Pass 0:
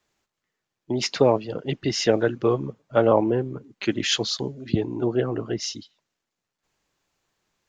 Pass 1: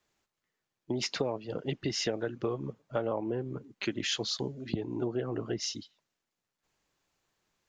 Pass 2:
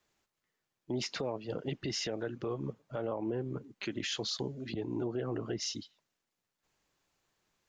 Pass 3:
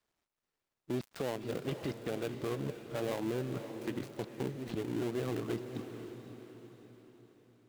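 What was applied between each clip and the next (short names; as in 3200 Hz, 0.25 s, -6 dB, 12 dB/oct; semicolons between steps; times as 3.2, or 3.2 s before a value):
compressor 6:1, threshold -25 dBFS, peak gain reduction 12 dB; gain -3.5 dB
limiter -26 dBFS, peak gain reduction 9 dB
switching dead time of 0.22 ms; diffused feedback echo 0.526 s, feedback 47%, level -9 dB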